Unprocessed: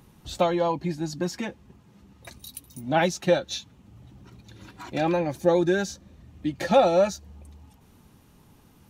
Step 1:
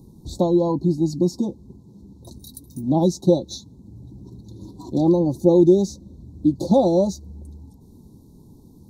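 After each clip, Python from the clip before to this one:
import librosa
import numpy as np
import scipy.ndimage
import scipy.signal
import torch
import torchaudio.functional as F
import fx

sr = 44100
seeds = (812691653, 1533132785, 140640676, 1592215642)

y = scipy.signal.sosfilt(scipy.signal.cheby1(4, 1.0, [1000.0, 3900.0], 'bandstop', fs=sr, output='sos'), x)
y = fx.low_shelf_res(y, sr, hz=470.0, db=8.5, q=1.5)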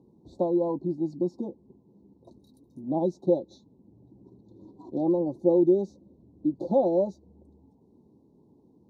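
y = fx.bandpass_q(x, sr, hz=520.0, q=0.98)
y = y * 10.0 ** (-4.5 / 20.0)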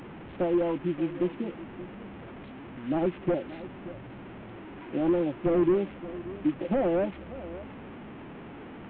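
y = fx.delta_mod(x, sr, bps=16000, step_db=-37.5)
y = y + 10.0 ** (-15.5 / 20.0) * np.pad(y, (int(578 * sr / 1000.0), 0))[:len(y)]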